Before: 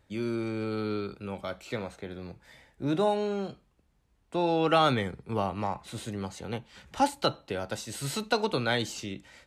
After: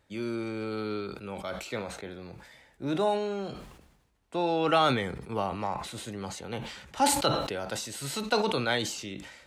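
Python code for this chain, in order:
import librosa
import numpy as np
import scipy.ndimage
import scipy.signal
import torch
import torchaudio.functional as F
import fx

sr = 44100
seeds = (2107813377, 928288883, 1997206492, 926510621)

y = fx.low_shelf(x, sr, hz=230.0, db=-6.0)
y = fx.sustainer(y, sr, db_per_s=57.0)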